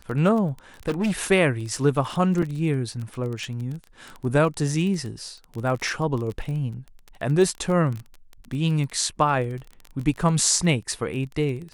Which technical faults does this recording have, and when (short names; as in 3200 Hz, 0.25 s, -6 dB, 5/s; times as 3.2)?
crackle 22/s -29 dBFS
0.88–1.24 clipped -19.5 dBFS
2.42 gap 4.9 ms